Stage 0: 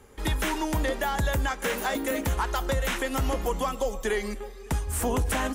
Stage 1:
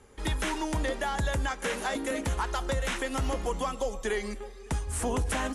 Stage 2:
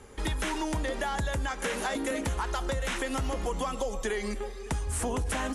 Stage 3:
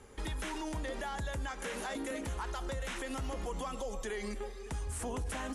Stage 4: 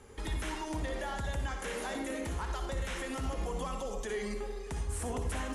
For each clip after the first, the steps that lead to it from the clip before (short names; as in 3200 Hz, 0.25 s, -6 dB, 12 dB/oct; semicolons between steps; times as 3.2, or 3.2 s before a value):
elliptic low-pass 11000 Hz, stop band 50 dB; gain -2 dB
in parallel at -0.5 dB: limiter -32 dBFS, peak gain reduction 11.5 dB; on the sum: compressor, threshold -27 dBFS, peak gain reduction 4.5 dB
limiter -25.5 dBFS, peak gain reduction 5.5 dB; gain -5 dB
reverb RT60 0.50 s, pre-delay 54 ms, DRR 4.5 dB